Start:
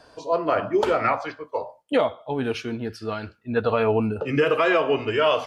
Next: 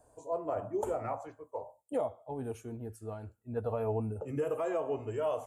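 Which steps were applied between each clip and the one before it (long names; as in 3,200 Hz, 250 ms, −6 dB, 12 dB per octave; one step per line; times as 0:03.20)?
drawn EQ curve 110 Hz 0 dB, 160 Hz −8 dB, 350 Hz −7 dB, 800 Hz −4 dB, 1,400 Hz −17 dB, 5,000 Hz −25 dB, 7,200 Hz +5 dB
level −6 dB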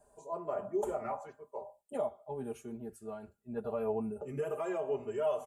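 comb filter 5 ms, depth 94%
level −4 dB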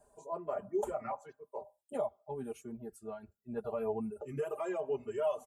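reverb reduction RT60 0.76 s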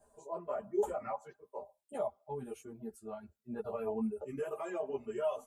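string-ensemble chorus
level +2.5 dB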